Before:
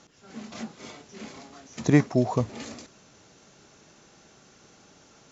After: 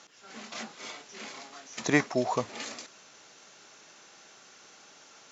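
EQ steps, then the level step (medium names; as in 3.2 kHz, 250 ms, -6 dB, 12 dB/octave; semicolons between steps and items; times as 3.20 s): high-pass 1.3 kHz 6 dB/octave; treble shelf 5 kHz -5 dB; +6.5 dB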